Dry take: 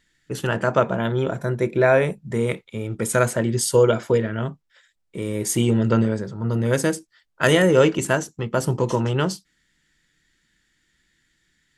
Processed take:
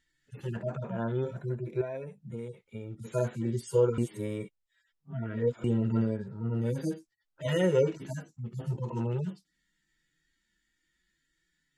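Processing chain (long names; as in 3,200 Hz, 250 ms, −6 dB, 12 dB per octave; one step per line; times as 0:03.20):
harmonic-percussive split with one part muted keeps harmonic
0:01.81–0:03.04: downward compressor 5 to 1, threshold −28 dBFS, peak gain reduction 13.5 dB
0:03.98–0:05.64: reverse
level −8 dB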